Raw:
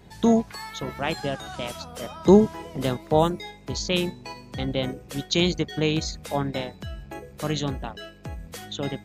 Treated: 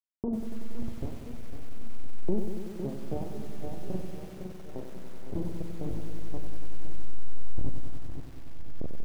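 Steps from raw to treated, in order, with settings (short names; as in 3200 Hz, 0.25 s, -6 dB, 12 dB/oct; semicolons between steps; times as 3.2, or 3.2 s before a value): level-crossing sampler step -15 dBFS; 4.43–4.89 low shelf 180 Hz -8.5 dB; feedback echo 0.508 s, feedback 43%, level -13 dB; compressor 2.5:1, threshold -34 dBFS, peak gain reduction 16.5 dB; doubler 44 ms -10 dB; reverb removal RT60 0.74 s; Bessel low-pass 500 Hz, order 8; wow and flutter 65 cents; on a send at -17 dB: reverb RT60 3.5 s, pre-delay 41 ms; on the sum: lo-fi delay 94 ms, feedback 80%, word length 8-bit, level -8 dB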